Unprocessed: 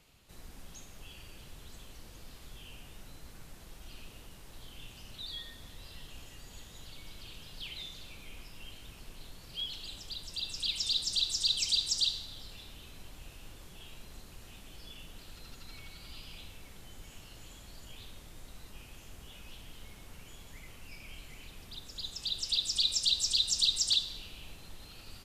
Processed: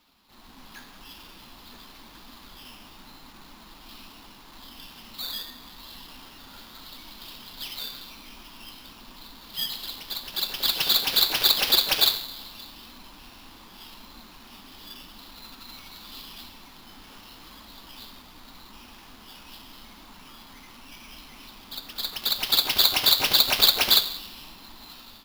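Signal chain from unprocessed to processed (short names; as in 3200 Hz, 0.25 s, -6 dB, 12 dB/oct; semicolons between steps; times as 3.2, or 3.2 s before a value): low shelf 120 Hz -8.5 dB; AGC gain up to 5.5 dB; graphic EQ 125/250/500/1000/2000/4000 Hz -9/+11/-11/+12/-6/+7 dB; sample-rate reducer 8200 Hz, jitter 0%; flange 0.85 Hz, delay 3 ms, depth 9 ms, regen -52%; gain +2.5 dB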